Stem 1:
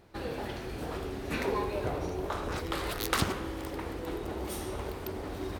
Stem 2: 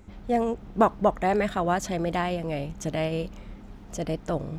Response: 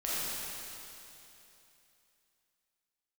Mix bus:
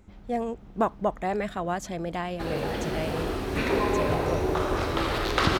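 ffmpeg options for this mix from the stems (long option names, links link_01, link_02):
-filter_complex "[0:a]acrossover=split=5500[link_01][link_02];[link_02]acompressor=threshold=-54dB:ratio=4:attack=1:release=60[link_03];[link_01][link_03]amix=inputs=2:normalize=0,adelay=2250,volume=1dB,asplit=2[link_04][link_05];[link_05]volume=-3.5dB[link_06];[1:a]volume=-4.5dB[link_07];[2:a]atrim=start_sample=2205[link_08];[link_06][link_08]afir=irnorm=-1:irlink=0[link_09];[link_04][link_07][link_09]amix=inputs=3:normalize=0"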